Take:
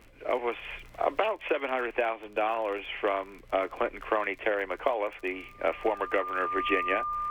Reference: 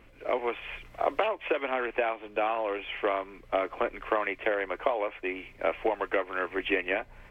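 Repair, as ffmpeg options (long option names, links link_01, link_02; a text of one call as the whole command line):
ffmpeg -i in.wav -af "adeclick=threshold=4,bandreject=frequency=1200:width=30" out.wav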